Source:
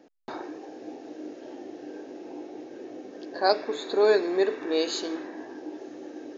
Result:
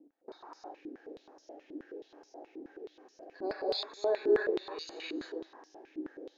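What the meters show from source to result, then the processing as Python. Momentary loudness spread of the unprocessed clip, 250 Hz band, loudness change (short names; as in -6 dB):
18 LU, -8.5 dB, -8.0 dB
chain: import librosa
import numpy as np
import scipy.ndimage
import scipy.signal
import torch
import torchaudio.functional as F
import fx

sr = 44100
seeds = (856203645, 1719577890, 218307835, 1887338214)

y = fx.filter_lfo_notch(x, sr, shape='sine', hz=1.0, low_hz=590.0, high_hz=3400.0, q=1.1)
y = fx.rev_gated(y, sr, seeds[0], gate_ms=330, shape='rising', drr_db=-1.0)
y = fx.filter_held_bandpass(y, sr, hz=9.4, low_hz=300.0, high_hz=5600.0)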